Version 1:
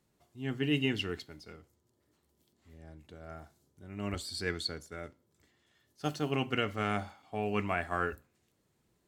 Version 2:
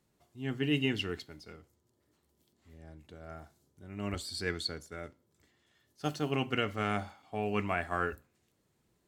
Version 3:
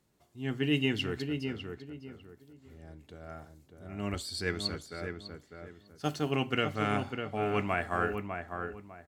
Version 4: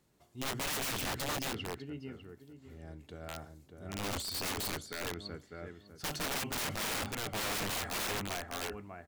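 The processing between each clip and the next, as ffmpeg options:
-af anull
-filter_complex "[0:a]asplit=2[s0][s1];[s1]adelay=601,lowpass=f=1700:p=1,volume=0.531,asplit=2[s2][s3];[s3]adelay=601,lowpass=f=1700:p=1,volume=0.29,asplit=2[s4][s5];[s5]adelay=601,lowpass=f=1700:p=1,volume=0.29,asplit=2[s6][s7];[s7]adelay=601,lowpass=f=1700:p=1,volume=0.29[s8];[s0][s2][s4][s6][s8]amix=inputs=5:normalize=0,volume=1.19"
-af "bandreject=f=105.3:t=h:w=4,bandreject=f=210.6:t=h:w=4,aeval=exprs='(mod(39.8*val(0)+1,2)-1)/39.8':c=same,volume=1.19"

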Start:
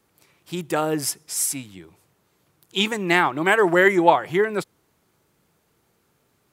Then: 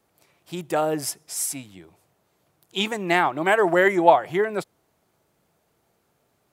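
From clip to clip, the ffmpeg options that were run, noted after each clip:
-af "equalizer=f=670:w=2.3:g=7.5,volume=0.668"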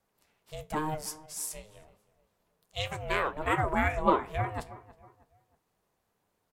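-filter_complex "[0:a]asplit=2[s0][s1];[s1]adelay=318,lowpass=f=1800:p=1,volume=0.126,asplit=2[s2][s3];[s3]adelay=318,lowpass=f=1800:p=1,volume=0.4,asplit=2[s4][s5];[s5]adelay=318,lowpass=f=1800:p=1,volume=0.4[s6];[s0][s2][s4][s6]amix=inputs=4:normalize=0,aeval=exprs='val(0)*sin(2*PI*310*n/s)':c=same,flanger=delay=8.6:depth=9.3:regen=-65:speed=0.33:shape=triangular,volume=0.794"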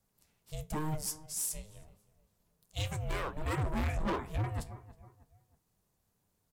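-af "bass=f=250:g=12,treble=f=4000:g=10,asoftclip=type=hard:threshold=0.075,volume=0.473"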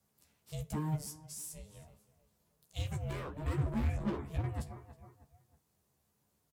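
-filter_complex "[0:a]highpass=60,acrossover=split=380[s0][s1];[s1]acompressor=threshold=0.00355:ratio=2.5[s2];[s0][s2]amix=inputs=2:normalize=0,asplit=2[s3][s4];[s4]adelay=14,volume=0.562[s5];[s3][s5]amix=inputs=2:normalize=0"

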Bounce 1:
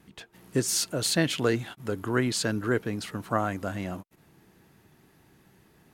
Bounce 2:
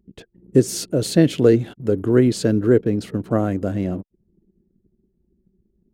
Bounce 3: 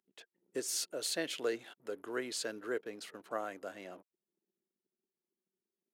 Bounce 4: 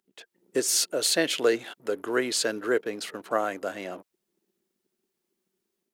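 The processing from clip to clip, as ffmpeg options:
-af "anlmdn=0.0251,lowshelf=f=660:t=q:w=1.5:g=11,volume=0.891"
-af "highpass=880,volume=0.398"
-af "dynaudnorm=f=200:g=3:m=1.78,volume=2.24"

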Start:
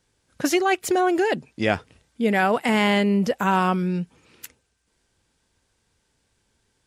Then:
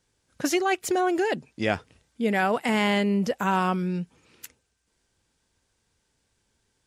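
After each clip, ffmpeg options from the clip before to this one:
-af "equalizer=f=6400:w=1.5:g=2,volume=0.668"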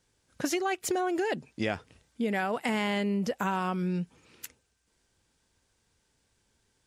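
-af "acompressor=threshold=0.0501:ratio=6"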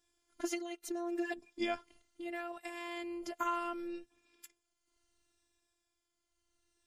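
-af "afftfilt=real='re*pow(10,8/40*sin(2*PI*(1.8*log(max(b,1)*sr/1024/100)/log(2)-(-0.69)*(pts-256)/sr)))':imag='im*pow(10,8/40*sin(2*PI*(1.8*log(max(b,1)*sr/1024/100)/log(2)-(-0.69)*(pts-256)/sr)))':win_size=1024:overlap=0.75,tremolo=f=0.57:d=0.56,afftfilt=real='hypot(re,im)*cos(PI*b)':imag='0':win_size=512:overlap=0.75,volume=0.75"

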